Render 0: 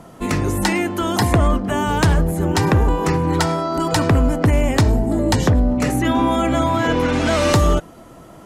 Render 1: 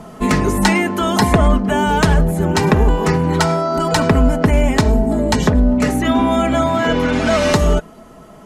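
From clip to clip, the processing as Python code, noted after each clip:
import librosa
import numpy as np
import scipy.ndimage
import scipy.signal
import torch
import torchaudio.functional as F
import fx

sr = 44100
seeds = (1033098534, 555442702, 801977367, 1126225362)

y = fx.high_shelf(x, sr, hz=8400.0, db=-5.0)
y = y + 0.56 * np.pad(y, (int(4.7 * sr / 1000.0), 0))[:len(y)]
y = fx.rider(y, sr, range_db=3, speed_s=2.0)
y = y * 10.0 ** (2.0 / 20.0)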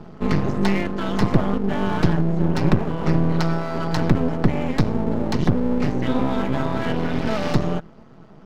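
y = scipy.signal.sosfilt(scipy.signal.ellip(3, 1.0, 40, [120.0, 5100.0], 'bandpass', fs=sr, output='sos'), x)
y = fx.bass_treble(y, sr, bass_db=14, treble_db=1)
y = np.maximum(y, 0.0)
y = y * 10.0 ** (-7.0 / 20.0)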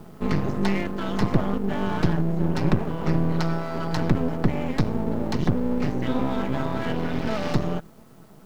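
y = fx.quant_dither(x, sr, seeds[0], bits=10, dither='triangular')
y = y * 10.0 ** (-3.5 / 20.0)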